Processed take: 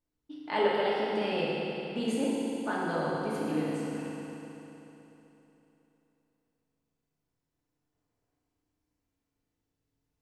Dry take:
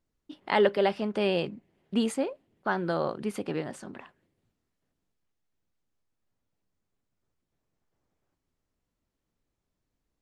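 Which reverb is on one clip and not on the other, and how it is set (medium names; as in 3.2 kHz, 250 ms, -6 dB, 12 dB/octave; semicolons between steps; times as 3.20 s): FDN reverb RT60 3.4 s, high-frequency decay 0.95×, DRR -6.5 dB; trim -8.5 dB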